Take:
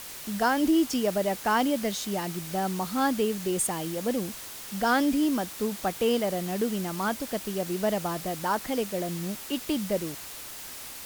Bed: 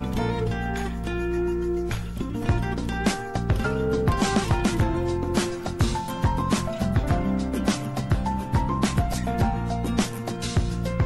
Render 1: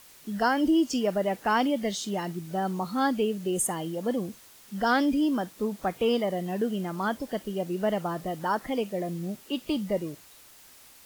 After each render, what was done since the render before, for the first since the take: noise print and reduce 12 dB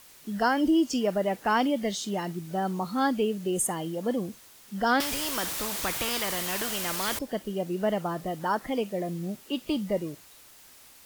5–7.19 spectral compressor 4:1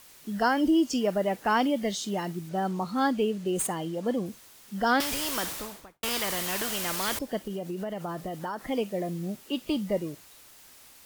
2.49–4.26 median filter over 3 samples; 5.38–6.03 studio fade out; 7.41–8.66 compressor 12:1, threshold -29 dBFS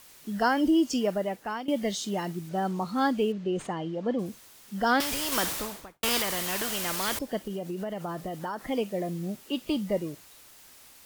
1.02–1.68 fade out, to -16.5 dB; 3.32–4.19 air absorption 150 m; 5.32–6.22 gain +3.5 dB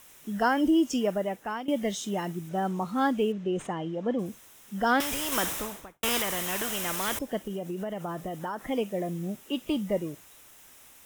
bell 4500 Hz -13 dB 0.24 oct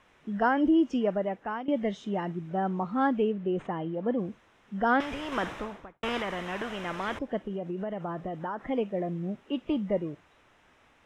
LPF 2200 Hz 12 dB/oct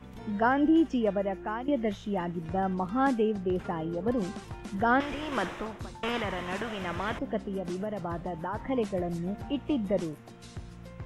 add bed -19 dB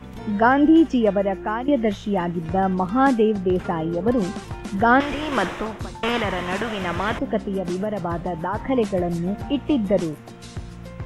gain +8.5 dB

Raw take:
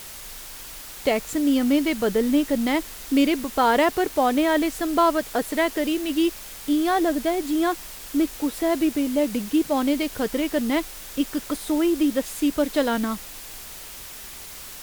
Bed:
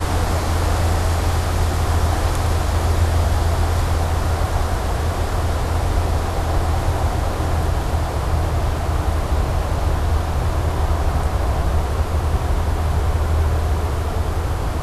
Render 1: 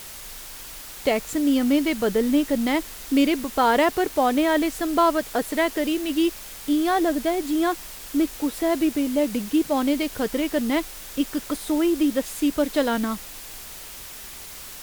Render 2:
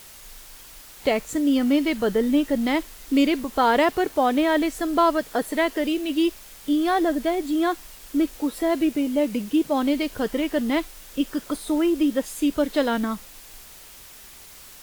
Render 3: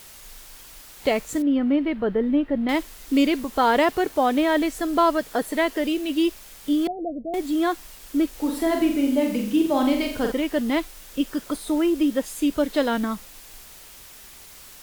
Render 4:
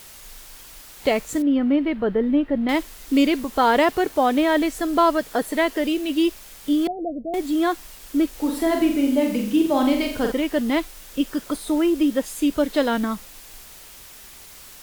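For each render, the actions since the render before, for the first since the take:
nothing audible
noise print and reduce 6 dB
1.42–2.69 air absorption 470 m; 6.87–7.34 rippled Chebyshev low-pass 730 Hz, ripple 9 dB; 8.33–10.32 flutter echo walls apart 7.4 m, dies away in 0.54 s
gain +1.5 dB

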